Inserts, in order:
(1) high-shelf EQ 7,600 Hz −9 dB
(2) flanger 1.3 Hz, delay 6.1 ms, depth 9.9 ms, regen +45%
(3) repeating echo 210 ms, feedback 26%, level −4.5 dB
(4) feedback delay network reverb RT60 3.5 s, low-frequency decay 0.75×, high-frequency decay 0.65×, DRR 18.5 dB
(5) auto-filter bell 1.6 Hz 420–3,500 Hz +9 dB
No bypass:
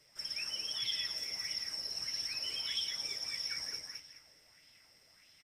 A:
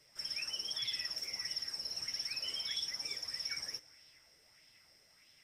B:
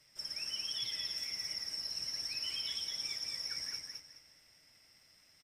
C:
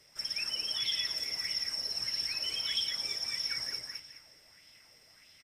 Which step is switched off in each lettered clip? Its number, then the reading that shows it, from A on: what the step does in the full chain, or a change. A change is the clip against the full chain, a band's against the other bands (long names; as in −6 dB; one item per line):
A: 3, change in momentary loudness spread −3 LU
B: 5, 500 Hz band −2.5 dB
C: 2, 8 kHz band −2.5 dB